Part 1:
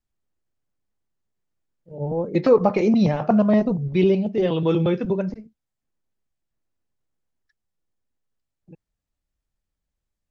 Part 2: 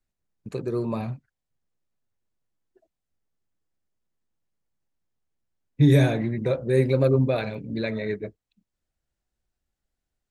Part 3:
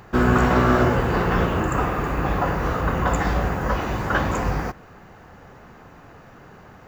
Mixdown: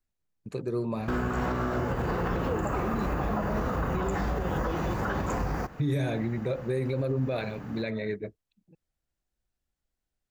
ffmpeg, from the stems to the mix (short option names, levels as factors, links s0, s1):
-filter_complex "[0:a]volume=0.224[s0];[1:a]volume=0.708[s1];[2:a]adynamicequalizer=threshold=0.0126:dfrequency=2600:dqfactor=0.75:tfrequency=2600:tqfactor=0.75:attack=5:release=100:ratio=0.375:range=2:mode=cutabove:tftype=bell,alimiter=limit=0.168:level=0:latency=1:release=228,adelay=950,volume=0.891[s2];[s0][s1][s2]amix=inputs=3:normalize=0,alimiter=limit=0.0944:level=0:latency=1:release=61"